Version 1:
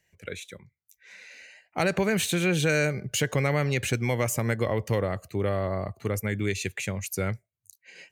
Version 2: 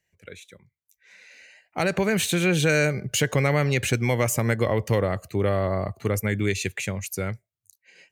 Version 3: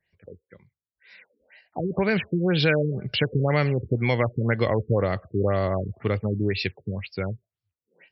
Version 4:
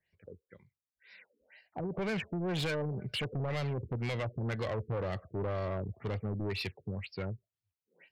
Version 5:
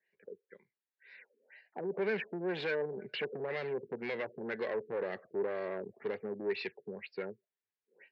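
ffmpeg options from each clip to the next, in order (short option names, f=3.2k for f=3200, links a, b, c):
-af "dynaudnorm=f=300:g=11:m=11.5dB,volume=-5.5dB"
-af "highshelf=f=5.1k:g=12,afftfilt=real='re*lt(b*sr/1024,460*pow(5700/460,0.5+0.5*sin(2*PI*2*pts/sr)))':imag='im*lt(b*sr/1024,460*pow(5700/460,0.5+0.5*sin(2*PI*2*pts/sr)))':win_size=1024:overlap=0.75"
-af "asoftclip=type=tanh:threshold=-24dB,volume=-6dB"
-af "highpass=f=230:w=0.5412,highpass=f=230:w=1.3066,equalizer=f=290:t=q:w=4:g=-7,equalizer=f=410:t=q:w=4:g=7,equalizer=f=670:t=q:w=4:g=-4,equalizer=f=1.2k:t=q:w=4:g=-7,equalizer=f=1.7k:t=q:w=4:g=6,equalizer=f=3.2k:t=q:w=4:g=-7,lowpass=f=3.8k:w=0.5412,lowpass=f=3.8k:w=1.3066"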